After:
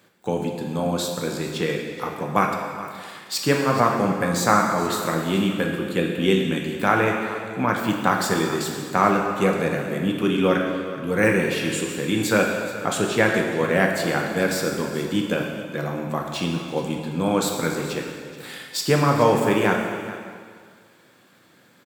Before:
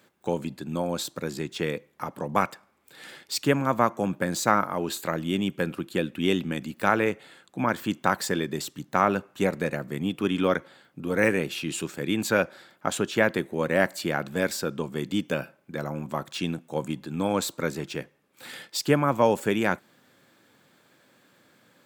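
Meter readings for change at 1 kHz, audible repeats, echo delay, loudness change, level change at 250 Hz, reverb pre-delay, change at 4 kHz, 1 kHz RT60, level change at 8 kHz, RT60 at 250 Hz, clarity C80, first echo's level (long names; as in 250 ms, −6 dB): +5.0 dB, 1, 425 ms, +4.5 dB, +5.0 dB, 3 ms, +4.5 dB, 1.9 s, +4.5 dB, 1.8 s, 4.5 dB, −15.5 dB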